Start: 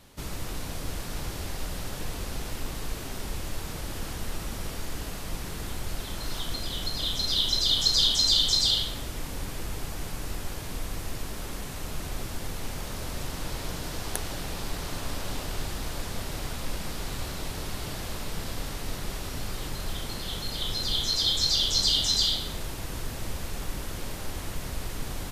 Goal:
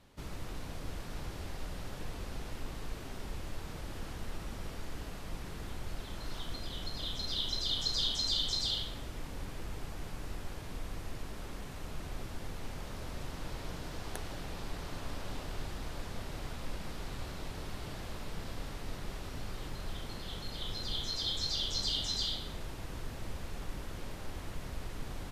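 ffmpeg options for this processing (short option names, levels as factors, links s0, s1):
-af "aemphasis=mode=reproduction:type=cd,volume=0.447"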